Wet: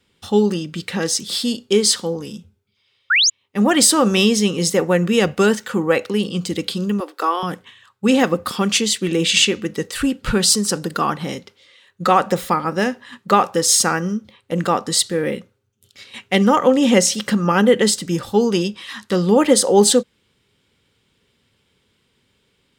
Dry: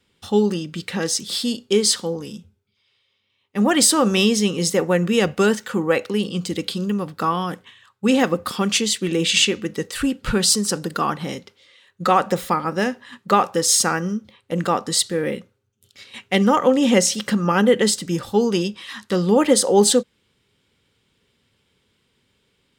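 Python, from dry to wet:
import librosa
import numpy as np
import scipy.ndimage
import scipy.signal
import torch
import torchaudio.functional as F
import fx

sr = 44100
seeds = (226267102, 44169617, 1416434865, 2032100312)

y = fx.spec_paint(x, sr, seeds[0], shape='rise', start_s=3.1, length_s=0.2, low_hz=1300.0, high_hz=7300.0, level_db=-16.0)
y = fx.steep_highpass(y, sr, hz=310.0, slope=48, at=(7.0, 7.43))
y = y * 10.0 ** (2.0 / 20.0)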